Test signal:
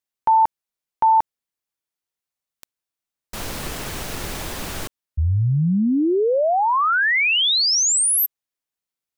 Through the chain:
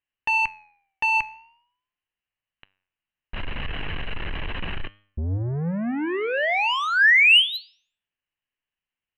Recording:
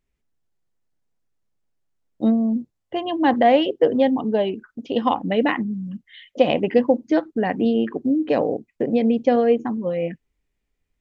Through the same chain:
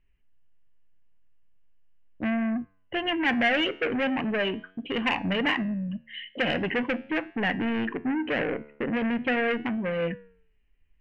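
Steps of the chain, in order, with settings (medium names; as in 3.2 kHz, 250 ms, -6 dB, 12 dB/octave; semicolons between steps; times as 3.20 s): rippled Chebyshev low-pass 4.1 kHz, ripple 9 dB; tilt EQ -3.5 dB/octave; in parallel at -0.5 dB: peak limiter -18 dBFS; on the sum: saturation -20 dBFS; high-order bell 2.2 kHz +15.5 dB 1.1 oct; flange 0.4 Hz, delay 9.7 ms, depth 4.1 ms, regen +88%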